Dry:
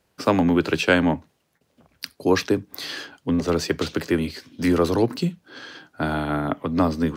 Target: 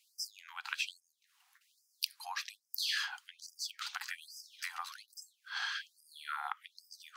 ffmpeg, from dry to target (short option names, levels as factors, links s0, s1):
-af "acompressor=threshold=0.0224:ratio=6,afftfilt=real='re*gte(b*sr/1024,700*pow(4900/700,0.5+0.5*sin(2*PI*1.2*pts/sr)))':imag='im*gte(b*sr/1024,700*pow(4900/700,0.5+0.5*sin(2*PI*1.2*pts/sr)))':win_size=1024:overlap=0.75,volume=1.5"